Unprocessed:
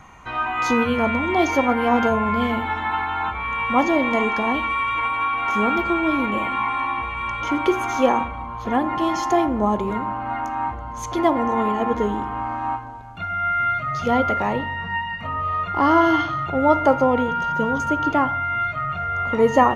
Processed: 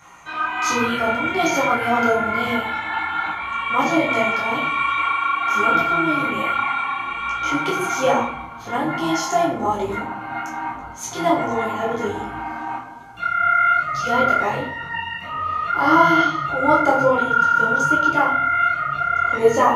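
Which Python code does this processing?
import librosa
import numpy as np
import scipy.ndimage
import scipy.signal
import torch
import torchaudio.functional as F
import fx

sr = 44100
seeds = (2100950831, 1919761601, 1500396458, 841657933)

y = fx.octave_divider(x, sr, octaves=1, level_db=-6.0)
y = fx.highpass(y, sr, hz=280.0, slope=6)
y = fx.high_shelf(y, sr, hz=3100.0, db=11.0)
y = fx.room_shoebox(y, sr, seeds[0], volume_m3=51.0, walls='mixed', distance_m=0.79)
y = fx.detune_double(y, sr, cents=42)
y = y * librosa.db_to_amplitude(-1.0)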